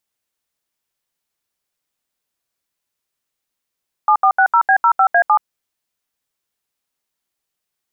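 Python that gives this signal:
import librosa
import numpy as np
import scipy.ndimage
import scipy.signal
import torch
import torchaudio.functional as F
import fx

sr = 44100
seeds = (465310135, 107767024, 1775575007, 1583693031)

y = fx.dtmf(sr, digits='7460B05A7', tone_ms=78, gap_ms=74, level_db=-11.5)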